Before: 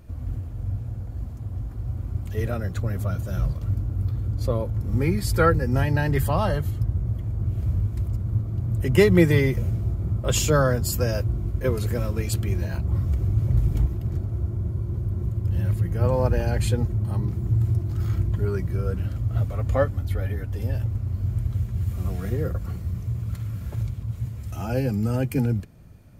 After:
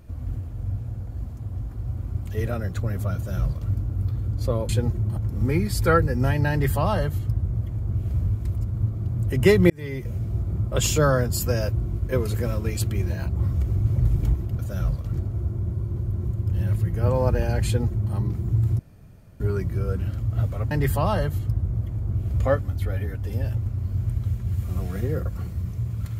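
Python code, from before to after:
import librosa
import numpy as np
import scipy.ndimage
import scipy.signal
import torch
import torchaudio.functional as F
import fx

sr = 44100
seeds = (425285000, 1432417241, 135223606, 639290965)

y = fx.edit(x, sr, fx.duplicate(start_s=3.16, length_s=0.54, to_s=14.11),
    fx.duplicate(start_s=6.03, length_s=1.69, to_s=19.69),
    fx.fade_in_span(start_s=9.22, length_s=0.71),
    fx.duplicate(start_s=16.64, length_s=0.48, to_s=4.69),
    fx.room_tone_fill(start_s=17.77, length_s=0.61), tone=tone)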